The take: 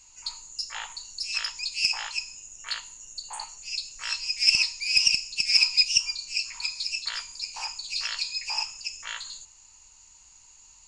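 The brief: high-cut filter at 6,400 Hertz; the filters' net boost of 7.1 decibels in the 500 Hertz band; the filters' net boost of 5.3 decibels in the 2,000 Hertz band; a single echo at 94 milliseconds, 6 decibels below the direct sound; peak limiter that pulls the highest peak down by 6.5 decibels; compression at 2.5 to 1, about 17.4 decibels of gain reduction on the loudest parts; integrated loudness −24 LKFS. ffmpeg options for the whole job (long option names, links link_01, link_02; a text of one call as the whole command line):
ffmpeg -i in.wav -af "lowpass=6400,equalizer=frequency=500:width_type=o:gain=9,equalizer=frequency=2000:width_type=o:gain=7.5,acompressor=threshold=-42dB:ratio=2.5,alimiter=level_in=5dB:limit=-24dB:level=0:latency=1,volume=-5dB,aecho=1:1:94:0.501,volume=15.5dB" out.wav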